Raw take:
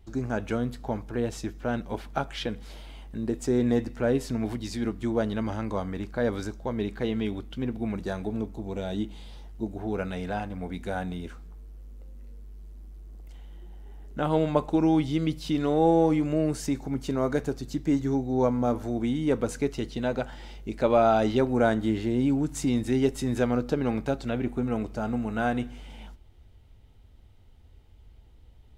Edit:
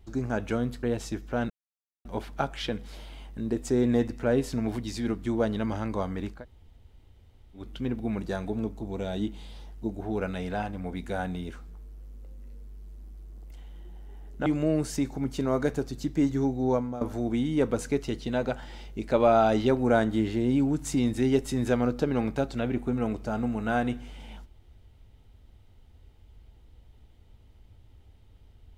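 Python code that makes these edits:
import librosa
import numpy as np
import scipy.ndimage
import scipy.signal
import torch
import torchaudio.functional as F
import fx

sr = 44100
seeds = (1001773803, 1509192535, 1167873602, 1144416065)

y = fx.edit(x, sr, fx.cut(start_s=0.83, length_s=0.32),
    fx.insert_silence(at_s=1.82, length_s=0.55),
    fx.room_tone_fill(start_s=6.14, length_s=1.24, crossfade_s=0.16),
    fx.cut(start_s=14.23, length_s=1.93),
    fx.fade_out_to(start_s=18.35, length_s=0.36, floor_db=-15.0), tone=tone)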